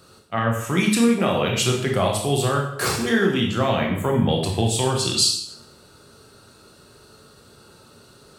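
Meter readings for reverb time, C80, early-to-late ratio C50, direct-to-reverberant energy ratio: 0.70 s, 8.0 dB, 5.0 dB, 0.0 dB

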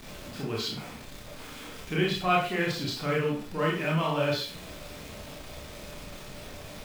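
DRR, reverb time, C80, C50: -3.5 dB, 0.45 s, 8.5 dB, 3.5 dB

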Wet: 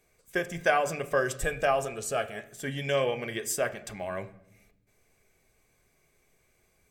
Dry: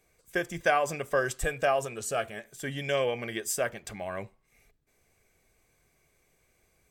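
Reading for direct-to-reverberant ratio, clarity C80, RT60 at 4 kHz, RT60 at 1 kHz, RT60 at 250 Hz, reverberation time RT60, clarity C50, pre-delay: 9.5 dB, 18.5 dB, 0.55 s, 0.65 s, 1.4 s, 0.80 s, 15.5 dB, 5 ms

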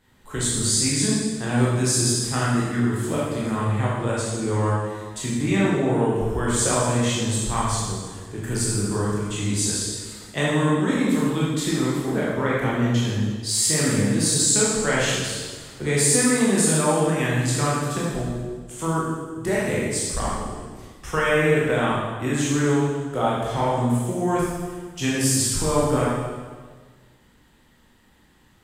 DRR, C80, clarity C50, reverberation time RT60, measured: -7.0 dB, 1.5 dB, -1.5 dB, 1.5 s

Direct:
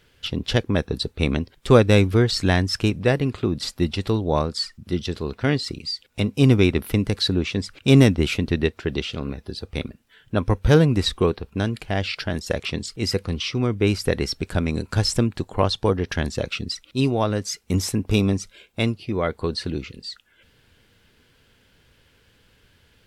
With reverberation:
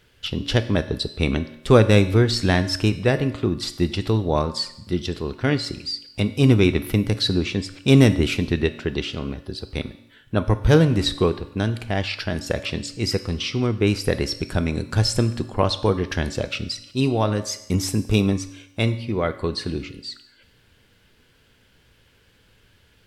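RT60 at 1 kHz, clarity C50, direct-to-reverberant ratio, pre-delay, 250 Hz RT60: 0.80 s, 13.5 dB, 10.5 dB, 3 ms, 0.85 s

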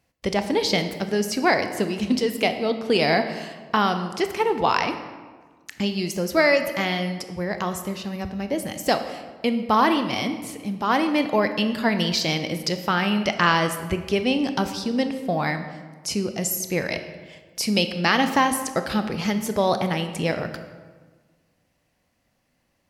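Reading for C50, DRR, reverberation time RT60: 9.5 dB, 8.0 dB, 1.5 s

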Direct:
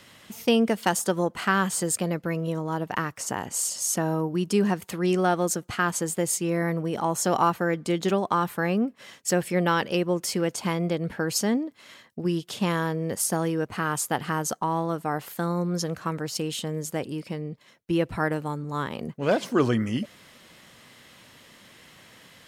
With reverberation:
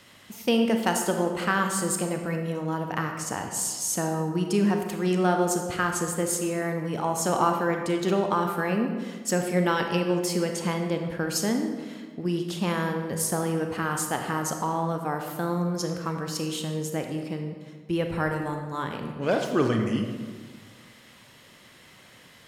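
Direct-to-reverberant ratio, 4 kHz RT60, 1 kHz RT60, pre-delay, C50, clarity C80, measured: 4.0 dB, 1.0 s, 1.5 s, 28 ms, 5.0 dB, 7.0 dB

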